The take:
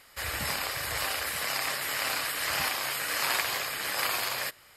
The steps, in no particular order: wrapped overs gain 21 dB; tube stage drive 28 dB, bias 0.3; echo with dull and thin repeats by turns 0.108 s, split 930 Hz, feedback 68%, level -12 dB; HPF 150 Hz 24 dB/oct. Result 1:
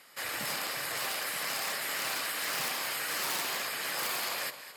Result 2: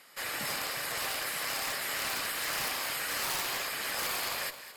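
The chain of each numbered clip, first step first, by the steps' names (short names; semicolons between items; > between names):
echo with dull and thin repeats by turns > wrapped overs > tube stage > HPF; HPF > wrapped overs > echo with dull and thin repeats by turns > tube stage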